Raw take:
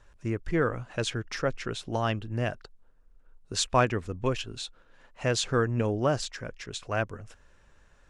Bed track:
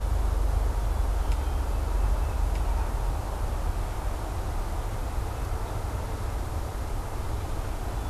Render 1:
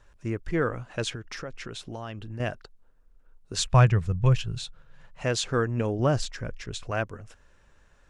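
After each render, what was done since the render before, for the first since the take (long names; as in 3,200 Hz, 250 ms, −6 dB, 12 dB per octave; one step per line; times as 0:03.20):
0:01.15–0:02.40: downward compressor 5 to 1, threshold −33 dBFS
0:03.57–0:05.23: low shelf with overshoot 200 Hz +8.5 dB, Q 3
0:05.99–0:06.91: low-shelf EQ 150 Hz +11 dB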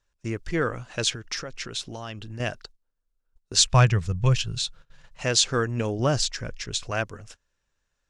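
noise gate −48 dBFS, range −19 dB
parametric band 5,500 Hz +11 dB 2 octaves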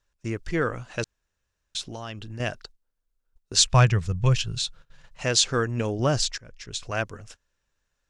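0:01.04–0:01.75: fill with room tone
0:06.38–0:07.01: fade in linear, from −21 dB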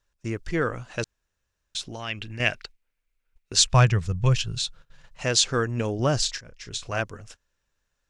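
0:01.99–0:03.53: parametric band 2,300 Hz +15 dB
0:06.19–0:07.00: double-tracking delay 30 ms −9.5 dB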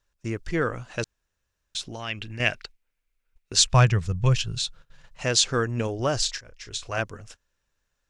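0:05.87–0:06.98: parametric band 180 Hz −9.5 dB 0.95 octaves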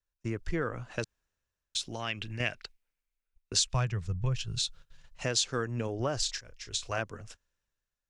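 downward compressor 4 to 1, threshold −30 dBFS, peak gain reduction 15 dB
multiband upward and downward expander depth 40%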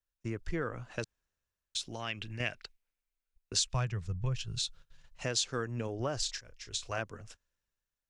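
level −3 dB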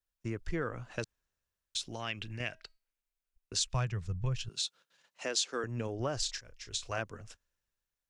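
0:02.39–0:03.61: tuned comb filter 320 Hz, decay 0.32 s, mix 30%
0:04.49–0:05.64: high-pass filter 250 Hz 24 dB per octave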